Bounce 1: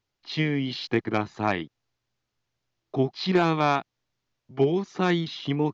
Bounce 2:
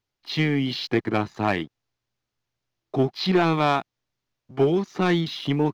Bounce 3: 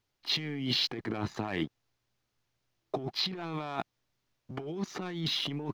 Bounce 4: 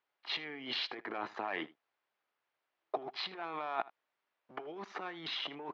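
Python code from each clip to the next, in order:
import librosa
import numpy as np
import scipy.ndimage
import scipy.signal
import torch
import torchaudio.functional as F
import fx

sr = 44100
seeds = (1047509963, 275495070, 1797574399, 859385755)

y1 = fx.leveller(x, sr, passes=1)
y2 = fx.over_compress(y1, sr, threshold_db=-30.0, ratio=-1.0)
y2 = y2 * 10.0 ** (-4.5 / 20.0)
y3 = fx.bandpass_edges(y2, sr, low_hz=620.0, high_hz=2200.0)
y3 = y3 + 10.0 ** (-20.5 / 20.0) * np.pad(y3, (int(79 * sr / 1000.0), 0))[:len(y3)]
y3 = y3 * 10.0 ** (2.0 / 20.0)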